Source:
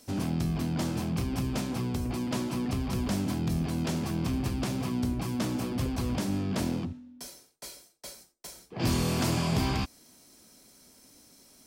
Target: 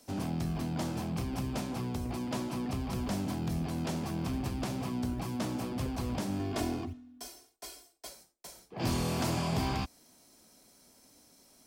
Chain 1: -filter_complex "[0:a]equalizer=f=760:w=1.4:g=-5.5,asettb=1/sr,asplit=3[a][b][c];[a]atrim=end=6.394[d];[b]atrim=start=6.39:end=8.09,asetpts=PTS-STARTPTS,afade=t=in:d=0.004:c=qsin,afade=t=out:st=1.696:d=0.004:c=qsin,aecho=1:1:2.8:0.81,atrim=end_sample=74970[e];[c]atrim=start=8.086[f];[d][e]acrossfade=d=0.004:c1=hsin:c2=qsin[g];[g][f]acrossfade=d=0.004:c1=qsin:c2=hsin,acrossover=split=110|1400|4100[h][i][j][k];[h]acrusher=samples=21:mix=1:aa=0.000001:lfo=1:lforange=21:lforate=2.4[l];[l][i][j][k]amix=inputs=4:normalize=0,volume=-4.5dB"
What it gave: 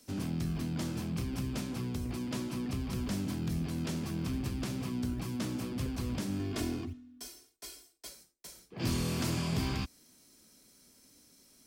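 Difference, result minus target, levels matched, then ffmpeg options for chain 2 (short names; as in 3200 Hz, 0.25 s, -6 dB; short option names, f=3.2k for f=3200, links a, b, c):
1000 Hz band -6.5 dB
-filter_complex "[0:a]equalizer=f=760:w=1.4:g=4.5,asettb=1/sr,asplit=3[a][b][c];[a]atrim=end=6.394[d];[b]atrim=start=6.39:end=8.09,asetpts=PTS-STARTPTS,afade=t=in:d=0.004:c=qsin,afade=t=out:st=1.696:d=0.004:c=qsin,aecho=1:1:2.8:0.81,atrim=end_sample=74970[e];[c]atrim=start=8.086[f];[d][e]acrossfade=d=0.004:c1=hsin:c2=qsin[g];[g][f]acrossfade=d=0.004:c1=qsin:c2=hsin,acrossover=split=110|1400|4100[h][i][j][k];[h]acrusher=samples=21:mix=1:aa=0.000001:lfo=1:lforange=21:lforate=2.4[l];[l][i][j][k]amix=inputs=4:normalize=0,volume=-4.5dB"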